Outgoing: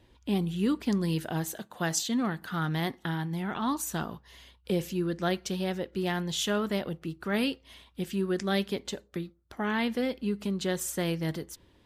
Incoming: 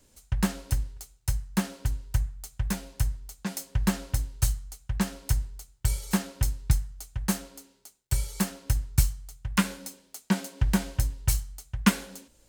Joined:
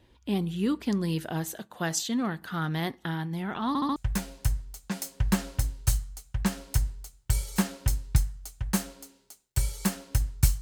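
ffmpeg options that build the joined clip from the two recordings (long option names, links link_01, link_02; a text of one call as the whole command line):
ffmpeg -i cue0.wav -i cue1.wav -filter_complex "[0:a]apad=whole_dur=10.61,atrim=end=10.61,asplit=4[link_01][link_02][link_03][link_04];[link_01]atrim=end=3.752[link_05];[link_02]atrim=start=3.678:end=3.752[link_06];[link_03]atrim=start=3.678:end=3.752[link_07];[link_04]atrim=start=3.678:end=3.752[link_08];[1:a]atrim=start=2.508:end=9.16[link_09];[link_05][link_06]acrossfade=duration=0.004:curve1=hsin:curve2=hsin[link_10];[link_10][link_07]acrossfade=duration=0.004:curve1=hsin:curve2=hsin[link_11];[link_11][link_08]acrossfade=duration=0.004:curve1=hsin:curve2=hsin[link_12];[link_12][link_09]acrossfade=duration=0.004:curve1=hsin:curve2=hsin" out.wav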